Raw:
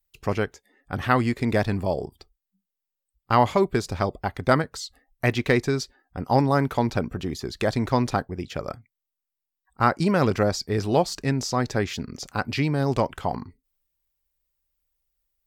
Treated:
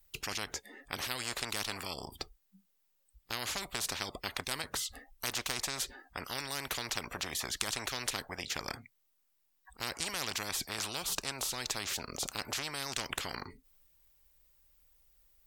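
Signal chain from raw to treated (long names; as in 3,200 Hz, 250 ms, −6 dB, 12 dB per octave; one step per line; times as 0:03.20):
0:10.92–0:12.43: parametric band 1,800 Hz −9 dB 0.71 octaves
every bin compressed towards the loudest bin 10 to 1
level −2.5 dB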